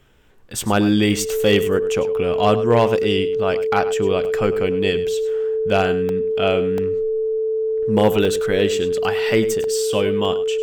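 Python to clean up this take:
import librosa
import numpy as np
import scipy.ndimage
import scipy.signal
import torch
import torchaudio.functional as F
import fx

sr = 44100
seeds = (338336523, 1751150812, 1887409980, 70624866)

y = fx.fix_declip(x, sr, threshold_db=-7.0)
y = fx.notch(y, sr, hz=440.0, q=30.0)
y = fx.fix_interpolate(y, sr, at_s=(4.25, 6.09, 6.78, 8.25, 9.64, 10.25), length_ms=1.3)
y = fx.fix_echo_inverse(y, sr, delay_ms=102, level_db=-14.5)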